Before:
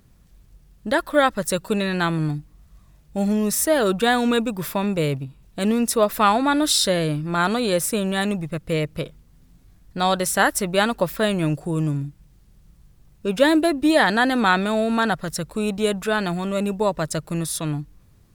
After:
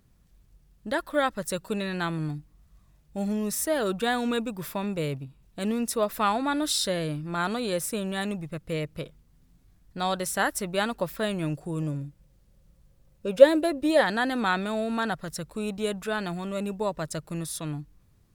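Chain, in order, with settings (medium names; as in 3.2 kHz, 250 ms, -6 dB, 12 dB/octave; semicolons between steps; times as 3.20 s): 11.82–14.02 s: peaking EQ 540 Hz +14.5 dB 0.22 oct; trim -7.5 dB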